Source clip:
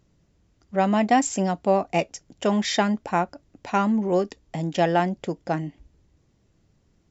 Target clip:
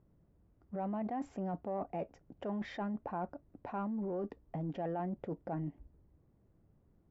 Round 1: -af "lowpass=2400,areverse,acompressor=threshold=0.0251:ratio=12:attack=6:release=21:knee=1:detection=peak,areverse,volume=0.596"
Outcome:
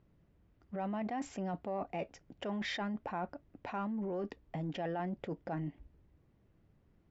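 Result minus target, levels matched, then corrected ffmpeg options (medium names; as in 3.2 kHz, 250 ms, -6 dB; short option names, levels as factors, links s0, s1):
2 kHz band +7.5 dB
-af "lowpass=1100,areverse,acompressor=threshold=0.0251:ratio=12:attack=6:release=21:knee=1:detection=peak,areverse,volume=0.596"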